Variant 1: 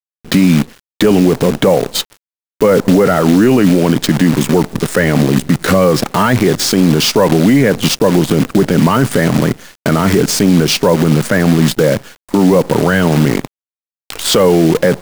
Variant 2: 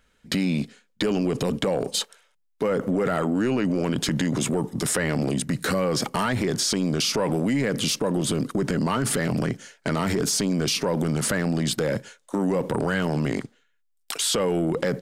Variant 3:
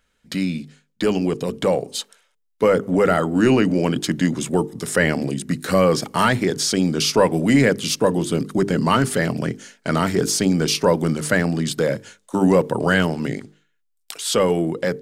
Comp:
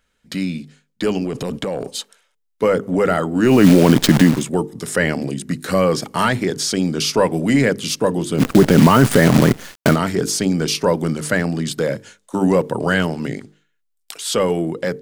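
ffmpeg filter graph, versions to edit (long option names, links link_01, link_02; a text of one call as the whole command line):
ffmpeg -i take0.wav -i take1.wav -i take2.wav -filter_complex "[0:a]asplit=2[link_01][link_02];[2:a]asplit=4[link_03][link_04][link_05][link_06];[link_03]atrim=end=1.242[link_07];[1:a]atrim=start=1.238:end=1.922[link_08];[link_04]atrim=start=1.918:end=3.65[link_09];[link_01]atrim=start=3.41:end=4.45[link_10];[link_05]atrim=start=4.21:end=8.43[link_11];[link_02]atrim=start=8.37:end=9.97[link_12];[link_06]atrim=start=9.91[link_13];[link_07][link_08]acrossfade=duration=0.004:curve1=hsin:curve2=hsin[link_14];[link_14][link_09]acrossfade=duration=0.004:curve1=hsin:curve2=hsin[link_15];[link_15][link_10]acrossfade=duration=0.24:curve1=tri:curve2=tri[link_16];[link_16][link_11]acrossfade=duration=0.24:curve1=tri:curve2=tri[link_17];[link_17][link_12]acrossfade=duration=0.06:curve1=tri:curve2=tri[link_18];[link_18][link_13]acrossfade=duration=0.06:curve1=tri:curve2=tri" out.wav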